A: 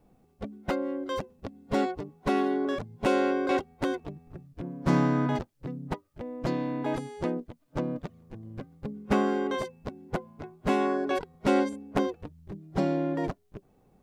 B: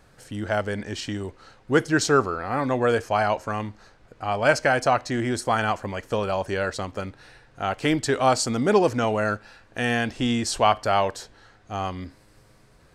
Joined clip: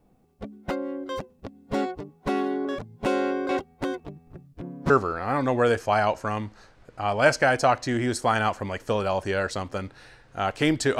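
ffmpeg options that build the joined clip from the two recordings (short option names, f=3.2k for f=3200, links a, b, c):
-filter_complex "[0:a]apad=whole_dur=10.99,atrim=end=10.99,atrim=end=4.902[a];[1:a]atrim=start=2.128:end=8.22[b];[a][b]acrossfade=d=0.004:c1=hsin:c2=hsin"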